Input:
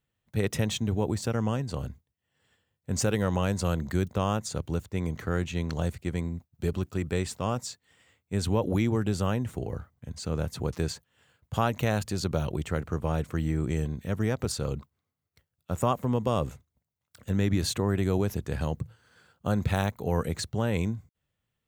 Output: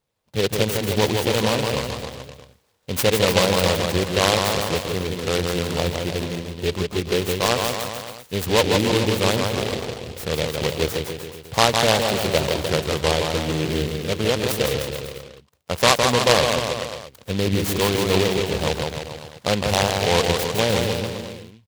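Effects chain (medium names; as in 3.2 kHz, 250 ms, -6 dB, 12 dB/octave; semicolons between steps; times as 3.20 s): graphic EQ 500/1000/4000/8000 Hz +9/+11/-5/+11 dB; bouncing-ball echo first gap 160 ms, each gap 0.9×, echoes 5; delay time shaken by noise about 2.8 kHz, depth 0.14 ms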